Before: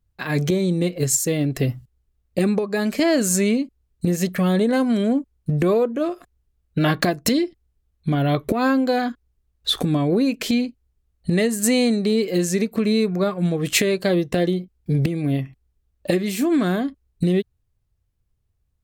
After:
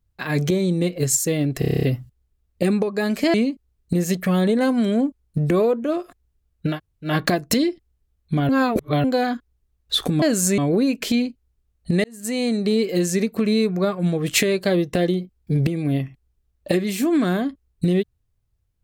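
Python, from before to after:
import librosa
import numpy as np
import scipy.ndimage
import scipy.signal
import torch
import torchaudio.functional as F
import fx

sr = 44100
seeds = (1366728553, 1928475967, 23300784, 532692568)

y = fx.edit(x, sr, fx.stutter(start_s=1.59, slice_s=0.03, count=9),
    fx.move(start_s=3.1, length_s=0.36, to_s=9.97),
    fx.insert_room_tone(at_s=6.84, length_s=0.37, crossfade_s=0.16),
    fx.reverse_span(start_s=8.24, length_s=0.55),
    fx.fade_in_span(start_s=11.43, length_s=0.63), tone=tone)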